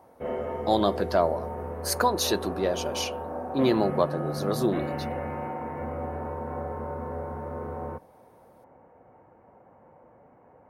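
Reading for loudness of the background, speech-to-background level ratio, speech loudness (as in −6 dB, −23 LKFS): −34.0 LKFS, 6.5 dB, −27.5 LKFS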